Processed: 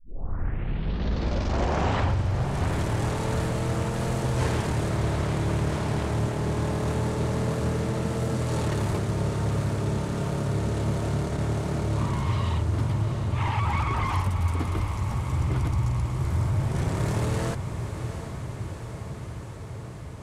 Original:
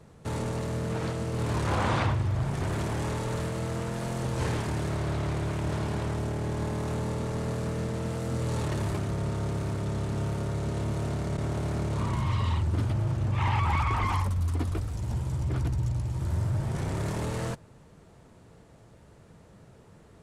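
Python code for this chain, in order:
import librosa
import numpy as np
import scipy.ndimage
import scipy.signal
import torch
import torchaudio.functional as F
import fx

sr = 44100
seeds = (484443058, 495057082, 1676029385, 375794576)

y = fx.tape_start_head(x, sr, length_s=2.35)
y = fx.rider(y, sr, range_db=3, speed_s=2.0)
y = fx.echo_diffused(y, sr, ms=743, feedback_pct=74, wet_db=-9.0)
y = y * 10.0 ** (2.0 / 20.0)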